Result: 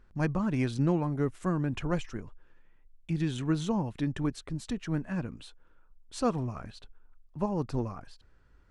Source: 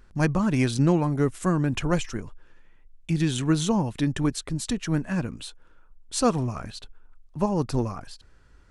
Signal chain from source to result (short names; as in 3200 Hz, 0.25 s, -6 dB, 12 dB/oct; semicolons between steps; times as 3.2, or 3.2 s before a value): high shelf 4800 Hz -11.5 dB; gain -6 dB